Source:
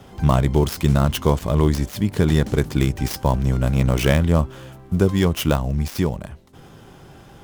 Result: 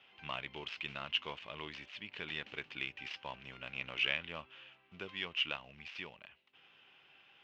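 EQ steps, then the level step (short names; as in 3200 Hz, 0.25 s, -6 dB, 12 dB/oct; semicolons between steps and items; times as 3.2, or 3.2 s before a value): band-pass 2700 Hz, Q 5.1; air absorption 190 m; +2.5 dB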